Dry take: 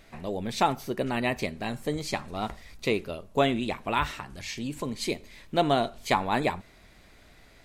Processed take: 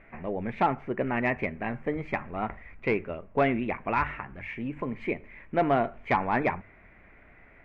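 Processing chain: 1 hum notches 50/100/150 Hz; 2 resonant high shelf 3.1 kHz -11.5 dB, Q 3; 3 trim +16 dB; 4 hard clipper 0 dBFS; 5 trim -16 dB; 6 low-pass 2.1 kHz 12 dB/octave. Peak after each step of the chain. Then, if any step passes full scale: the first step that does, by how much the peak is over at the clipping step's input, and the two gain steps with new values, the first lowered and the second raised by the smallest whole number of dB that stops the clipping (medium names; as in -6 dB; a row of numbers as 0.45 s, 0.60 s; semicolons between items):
-8.5 dBFS, -6.5 dBFS, +9.5 dBFS, 0.0 dBFS, -16.0 dBFS, -15.5 dBFS; step 3, 9.5 dB; step 3 +6 dB, step 5 -6 dB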